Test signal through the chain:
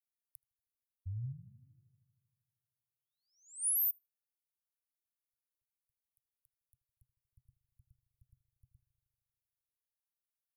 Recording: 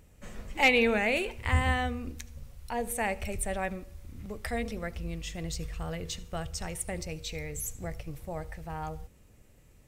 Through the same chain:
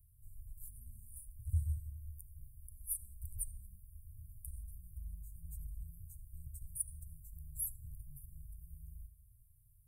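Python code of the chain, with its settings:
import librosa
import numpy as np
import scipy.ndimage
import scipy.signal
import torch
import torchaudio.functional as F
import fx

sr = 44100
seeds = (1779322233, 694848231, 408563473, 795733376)

y = scipy.signal.sosfilt(scipy.signal.cheby1(5, 1.0, [130.0, 9600.0], 'bandstop', fs=sr, output='sos'), x)
y = fx.low_shelf(y, sr, hz=390.0, db=-8.0)
y = fx.echo_filtered(y, sr, ms=78, feedback_pct=74, hz=3200.0, wet_db=-17)
y = y * 10.0 ** (1.0 / 20.0)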